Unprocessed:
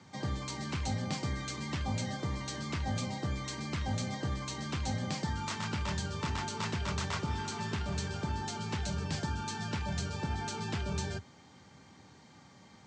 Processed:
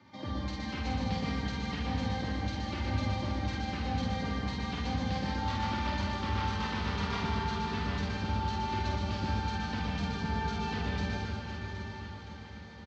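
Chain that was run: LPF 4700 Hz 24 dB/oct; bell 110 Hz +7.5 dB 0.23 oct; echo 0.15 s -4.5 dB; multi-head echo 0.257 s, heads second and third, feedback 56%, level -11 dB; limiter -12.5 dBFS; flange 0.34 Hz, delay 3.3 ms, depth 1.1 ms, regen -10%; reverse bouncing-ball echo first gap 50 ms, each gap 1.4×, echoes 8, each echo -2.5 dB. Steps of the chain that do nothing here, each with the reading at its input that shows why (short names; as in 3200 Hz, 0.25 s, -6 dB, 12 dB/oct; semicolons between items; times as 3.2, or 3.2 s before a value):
limiter -12.5 dBFS: input peak -18.5 dBFS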